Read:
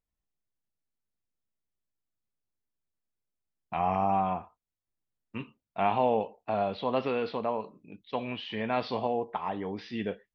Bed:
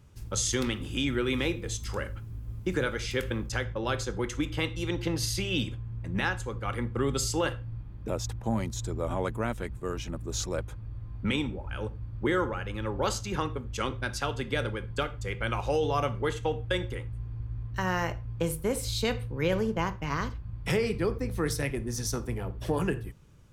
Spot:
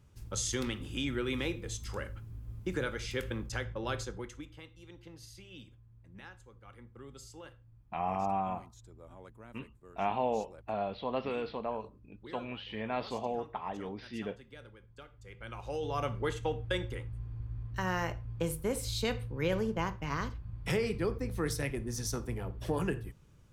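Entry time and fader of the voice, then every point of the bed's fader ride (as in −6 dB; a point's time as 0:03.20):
4.20 s, −5.5 dB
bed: 0:04.01 −5.5 dB
0:04.64 −21.5 dB
0:15.02 −21.5 dB
0:16.12 −4 dB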